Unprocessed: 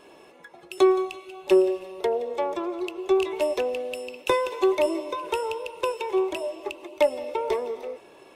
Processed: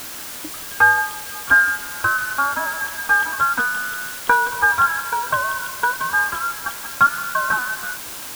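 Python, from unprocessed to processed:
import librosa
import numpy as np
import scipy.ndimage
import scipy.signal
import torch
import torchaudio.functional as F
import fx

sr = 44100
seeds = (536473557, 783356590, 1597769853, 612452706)

p1 = fx.band_invert(x, sr, width_hz=2000)
p2 = scipy.signal.sosfilt(scipy.signal.butter(2, 1000.0, 'lowpass', fs=sr, output='sos'), p1)
p3 = fx.quant_dither(p2, sr, seeds[0], bits=6, dither='triangular')
p4 = p2 + (p3 * 10.0 ** (-6.0 / 20.0))
y = p4 * 10.0 ** (9.0 / 20.0)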